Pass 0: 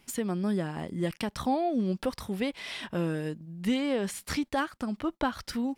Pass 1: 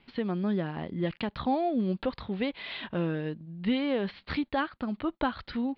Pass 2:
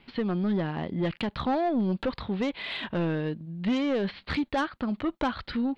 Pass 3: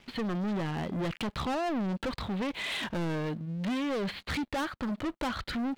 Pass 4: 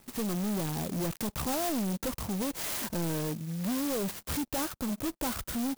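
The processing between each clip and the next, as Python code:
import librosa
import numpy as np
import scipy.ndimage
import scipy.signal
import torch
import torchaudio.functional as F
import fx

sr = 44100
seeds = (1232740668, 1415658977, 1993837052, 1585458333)

y1 = scipy.signal.sosfilt(scipy.signal.butter(12, 4400.0, 'lowpass', fs=sr, output='sos'), x)
y2 = 10.0 ** (-25.0 / 20.0) * np.tanh(y1 / 10.0 ** (-25.0 / 20.0))
y2 = F.gain(torch.from_numpy(y2), 4.5).numpy()
y3 = fx.leveller(y2, sr, passes=3)
y3 = F.gain(torch.from_numpy(y3), -7.5).numpy()
y4 = fx.clock_jitter(y3, sr, seeds[0], jitter_ms=0.14)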